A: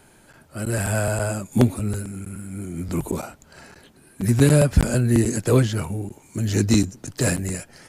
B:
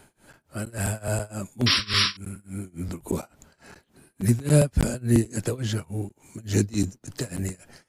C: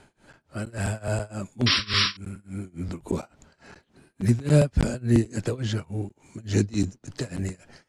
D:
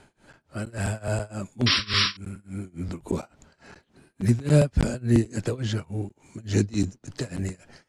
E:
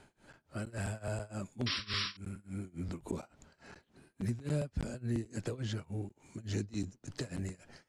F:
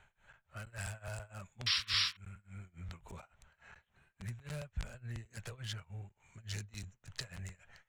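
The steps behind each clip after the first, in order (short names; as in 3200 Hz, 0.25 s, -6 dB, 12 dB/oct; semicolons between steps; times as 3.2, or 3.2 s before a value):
painted sound noise, 1.66–2.17, 990–5700 Hz -18 dBFS; tremolo 3.5 Hz, depth 96%; dynamic EQ 1400 Hz, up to -4 dB, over -34 dBFS, Q 0.73
LPF 6200 Hz 12 dB/oct
nothing audible
compressor 2.5:1, threshold -30 dBFS, peak gain reduction 11.5 dB; gain -5.5 dB
Wiener smoothing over 9 samples; passive tone stack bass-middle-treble 10-0-10; gain +6.5 dB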